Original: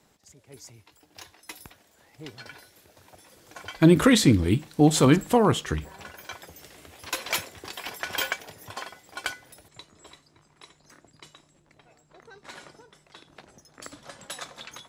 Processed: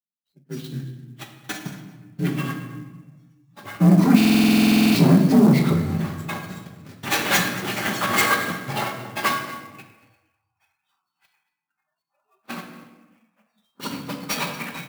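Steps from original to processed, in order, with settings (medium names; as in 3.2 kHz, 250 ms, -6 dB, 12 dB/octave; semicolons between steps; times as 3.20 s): frequency axis rescaled in octaves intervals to 84%; resonant low shelf 330 Hz +8.5 dB, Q 1.5; in parallel at +1.5 dB: compression, threshold -23 dBFS, peak gain reduction 18 dB; on the sum: gate -37 dBFS, range -29 dB; level rider gain up to 6.5 dB; saturation -12.5 dBFS, distortion -9 dB; high-pass 120 Hz 24 dB/octave; simulated room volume 950 m³, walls mixed, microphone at 1.2 m; spectral noise reduction 29 dB; on a send: delay 230 ms -19 dB; on the sum: buffer glitch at 4.16 s, samples 2048, times 16; sampling jitter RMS 0.024 ms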